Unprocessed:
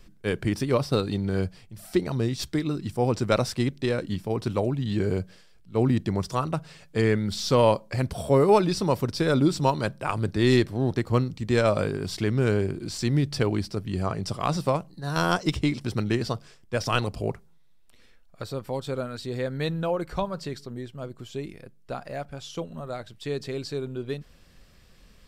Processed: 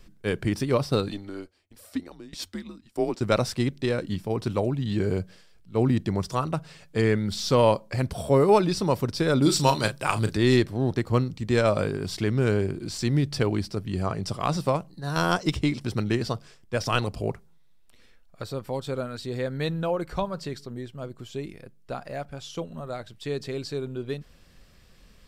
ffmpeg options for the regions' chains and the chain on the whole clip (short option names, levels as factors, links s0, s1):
-filter_complex "[0:a]asettb=1/sr,asplit=3[s0][s1][s2];[s0]atrim=end=1.084[s3];[s1]atrim=start=1.08:end=3.21,asetpts=PTS-STARTPTS,afade=t=in:d=0.004:c=qsin,afade=t=out:st=2.126:d=0.004:c=qsin,lowshelf=f=260:t=q:w=1.5:g=-11.5,afreqshift=-96,aeval=exprs='val(0)*pow(10,-19*if(lt(mod(1.6*n/s,1),2*abs(1.6)/1000),1-mod(1.6*n/s,1)/(2*abs(1.6)/1000),(mod(1.6*n/s,1)-2*abs(1.6)/1000)/(1-2*abs(1.6)/1000))/20)':c=same[s4];[s2]atrim=start=3.206[s5];[s3][s4]acrossfade=d=0.004:c1=hsin:c2=qsin[s6];[s6][s5]acrossfade=d=0.004:c1=qsin:c2=hsin,asettb=1/sr,asplit=3[s7][s8][s9];[s7]atrim=end=9.424[s10];[s8]atrim=start=9.42:end=10.37,asetpts=PTS-STARTPTS,afade=t=in:d=0.004:c=qsin,afade=t=out:st=0.946:d=0.004:c=qsin,highshelf=f=2300:g=11,asplit=2[s11][s12];[s12]adelay=36,volume=0.355[s13];[s11][s13]amix=inputs=2:normalize=0,atrim=end_sample=41895[s14];[s9]atrim=start=10.366[s15];[s10][s14]acrossfade=d=0.004:c1=hsin:c2=qsin[s16];[s16][s15]acrossfade=d=0.004:c1=qsin:c2=hsin"